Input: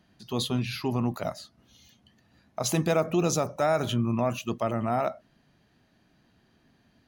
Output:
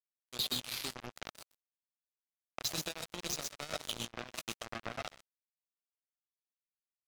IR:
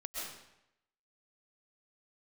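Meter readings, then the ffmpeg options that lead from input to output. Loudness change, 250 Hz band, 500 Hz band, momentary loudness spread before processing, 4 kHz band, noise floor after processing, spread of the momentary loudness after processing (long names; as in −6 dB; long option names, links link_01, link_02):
−11.5 dB, −20.5 dB, −19.5 dB, 9 LU, −1.0 dB, below −85 dBFS, 13 LU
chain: -filter_complex "[0:a]asuperstop=centerf=940:order=4:qfactor=3.7,equalizer=frequency=4200:width=1.4:gain=9.5,aecho=1:1:1176:0.119,acrossover=split=270|3000[link_01][link_02][link_03];[link_02]acompressor=threshold=-33dB:ratio=5[link_04];[link_01][link_04][link_03]amix=inputs=3:normalize=0,asplit=2[link_05][link_06];[link_06]highpass=frequency=720:poles=1,volume=12dB,asoftclip=type=tanh:threshold=-10dB[link_07];[link_05][link_07]amix=inputs=2:normalize=0,lowpass=frequency=5400:poles=1,volume=-6dB[link_08];[1:a]atrim=start_sample=2205,afade=type=out:start_time=0.18:duration=0.01,atrim=end_sample=8379[link_09];[link_08][link_09]afir=irnorm=-1:irlink=0,acrusher=bits=3:mix=0:aa=0.5,acompressor=threshold=-38dB:ratio=2"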